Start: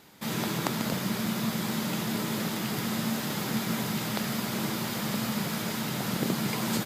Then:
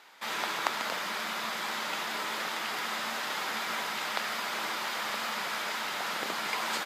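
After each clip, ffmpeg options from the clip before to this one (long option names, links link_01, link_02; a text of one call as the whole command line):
ffmpeg -i in.wav -af "highpass=960,aemphasis=mode=reproduction:type=75kf,volume=7dB" out.wav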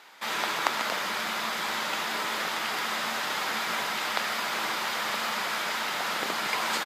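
ffmpeg -i in.wav -filter_complex "[0:a]asplit=6[link_01][link_02][link_03][link_04][link_05][link_06];[link_02]adelay=126,afreqshift=-51,volume=-15.5dB[link_07];[link_03]adelay=252,afreqshift=-102,volume=-20.7dB[link_08];[link_04]adelay=378,afreqshift=-153,volume=-25.9dB[link_09];[link_05]adelay=504,afreqshift=-204,volume=-31.1dB[link_10];[link_06]adelay=630,afreqshift=-255,volume=-36.3dB[link_11];[link_01][link_07][link_08][link_09][link_10][link_11]amix=inputs=6:normalize=0,volume=3.5dB" out.wav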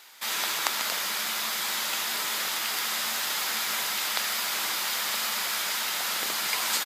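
ffmpeg -i in.wav -af "crystalizer=i=5:c=0,volume=-6.5dB" out.wav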